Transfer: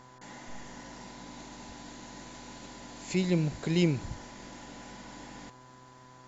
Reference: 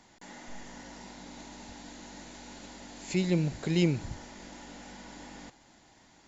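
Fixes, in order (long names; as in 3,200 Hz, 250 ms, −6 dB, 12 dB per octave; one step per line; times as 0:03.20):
hum removal 127.7 Hz, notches 14
notch filter 1,000 Hz, Q 30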